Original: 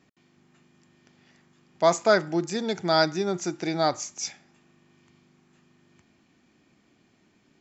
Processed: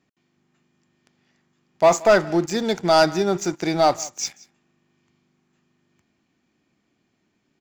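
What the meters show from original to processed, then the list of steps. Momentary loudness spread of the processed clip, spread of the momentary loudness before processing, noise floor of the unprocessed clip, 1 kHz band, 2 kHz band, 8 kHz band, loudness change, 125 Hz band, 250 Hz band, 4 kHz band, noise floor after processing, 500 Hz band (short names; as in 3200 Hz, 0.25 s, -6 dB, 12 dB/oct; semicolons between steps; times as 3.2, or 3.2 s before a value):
10 LU, 10 LU, -65 dBFS, +6.0 dB, +3.5 dB, n/a, +5.5 dB, +4.0 dB, +5.0 dB, +2.5 dB, -72 dBFS, +6.0 dB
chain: dynamic EQ 790 Hz, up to +4 dB, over -30 dBFS, Q 0.9; sample leveller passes 2; on a send: echo 0.177 s -22 dB; on the sum: gain -2.5 dB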